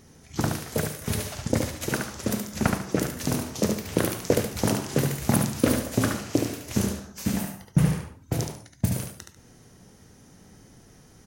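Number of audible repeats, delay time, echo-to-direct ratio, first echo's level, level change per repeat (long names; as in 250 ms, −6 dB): 2, 72 ms, −4.5 dB, −5.0 dB, −11.5 dB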